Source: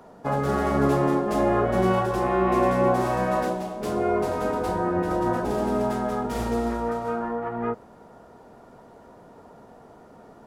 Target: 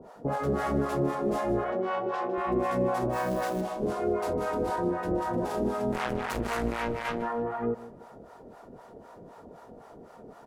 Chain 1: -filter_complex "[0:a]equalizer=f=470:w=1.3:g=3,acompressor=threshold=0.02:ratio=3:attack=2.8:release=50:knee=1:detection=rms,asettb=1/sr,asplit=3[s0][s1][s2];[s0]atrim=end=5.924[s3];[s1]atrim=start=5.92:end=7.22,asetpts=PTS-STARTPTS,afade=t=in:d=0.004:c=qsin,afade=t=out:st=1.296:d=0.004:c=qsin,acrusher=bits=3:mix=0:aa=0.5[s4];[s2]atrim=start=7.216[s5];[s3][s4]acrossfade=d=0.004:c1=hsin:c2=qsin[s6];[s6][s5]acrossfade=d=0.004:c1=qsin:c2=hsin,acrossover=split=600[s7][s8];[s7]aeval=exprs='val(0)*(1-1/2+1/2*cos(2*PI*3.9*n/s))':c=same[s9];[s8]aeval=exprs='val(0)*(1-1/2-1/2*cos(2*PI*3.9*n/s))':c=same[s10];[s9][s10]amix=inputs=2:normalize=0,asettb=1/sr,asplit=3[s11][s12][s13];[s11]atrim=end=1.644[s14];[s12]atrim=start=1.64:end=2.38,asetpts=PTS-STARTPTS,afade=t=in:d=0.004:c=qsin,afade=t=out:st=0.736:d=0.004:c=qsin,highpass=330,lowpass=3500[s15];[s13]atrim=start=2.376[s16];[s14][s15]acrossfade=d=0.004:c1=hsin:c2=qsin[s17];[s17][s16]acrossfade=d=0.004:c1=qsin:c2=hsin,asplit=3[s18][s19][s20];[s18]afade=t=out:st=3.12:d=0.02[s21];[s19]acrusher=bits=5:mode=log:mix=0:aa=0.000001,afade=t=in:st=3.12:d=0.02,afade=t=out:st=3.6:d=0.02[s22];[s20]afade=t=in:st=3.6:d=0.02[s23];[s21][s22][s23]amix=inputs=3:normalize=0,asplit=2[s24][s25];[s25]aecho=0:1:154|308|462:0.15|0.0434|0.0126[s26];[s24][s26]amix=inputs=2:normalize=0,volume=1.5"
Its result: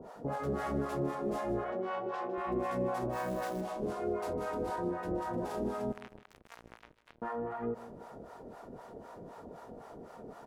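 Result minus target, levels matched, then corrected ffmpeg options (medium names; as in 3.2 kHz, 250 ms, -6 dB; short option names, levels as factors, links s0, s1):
compression: peak gain reduction +6.5 dB
-filter_complex "[0:a]equalizer=f=470:w=1.3:g=3,acompressor=threshold=0.0596:ratio=3:attack=2.8:release=50:knee=1:detection=rms,asettb=1/sr,asplit=3[s0][s1][s2];[s0]atrim=end=5.924[s3];[s1]atrim=start=5.92:end=7.22,asetpts=PTS-STARTPTS,afade=t=in:d=0.004:c=qsin,afade=t=out:st=1.296:d=0.004:c=qsin,acrusher=bits=3:mix=0:aa=0.5[s4];[s2]atrim=start=7.216[s5];[s3][s4]acrossfade=d=0.004:c1=hsin:c2=qsin[s6];[s6][s5]acrossfade=d=0.004:c1=qsin:c2=hsin,acrossover=split=600[s7][s8];[s7]aeval=exprs='val(0)*(1-1/2+1/2*cos(2*PI*3.9*n/s))':c=same[s9];[s8]aeval=exprs='val(0)*(1-1/2-1/2*cos(2*PI*3.9*n/s))':c=same[s10];[s9][s10]amix=inputs=2:normalize=0,asettb=1/sr,asplit=3[s11][s12][s13];[s11]atrim=end=1.644[s14];[s12]atrim=start=1.64:end=2.38,asetpts=PTS-STARTPTS,afade=t=in:d=0.004:c=qsin,afade=t=out:st=0.736:d=0.004:c=qsin,highpass=330,lowpass=3500[s15];[s13]atrim=start=2.376[s16];[s14][s15]acrossfade=d=0.004:c1=hsin:c2=qsin[s17];[s17][s16]acrossfade=d=0.004:c1=qsin:c2=hsin,asplit=3[s18][s19][s20];[s18]afade=t=out:st=3.12:d=0.02[s21];[s19]acrusher=bits=5:mode=log:mix=0:aa=0.000001,afade=t=in:st=3.12:d=0.02,afade=t=out:st=3.6:d=0.02[s22];[s20]afade=t=in:st=3.6:d=0.02[s23];[s21][s22][s23]amix=inputs=3:normalize=0,asplit=2[s24][s25];[s25]aecho=0:1:154|308|462:0.15|0.0434|0.0126[s26];[s24][s26]amix=inputs=2:normalize=0,volume=1.5"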